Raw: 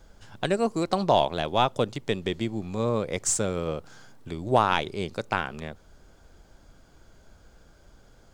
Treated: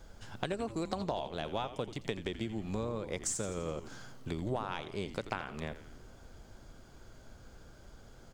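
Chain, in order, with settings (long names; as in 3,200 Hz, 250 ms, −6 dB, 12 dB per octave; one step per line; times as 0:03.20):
downward compressor 12 to 1, threshold −32 dBFS, peak gain reduction 18 dB
echo with shifted repeats 85 ms, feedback 59%, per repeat −130 Hz, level −12.5 dB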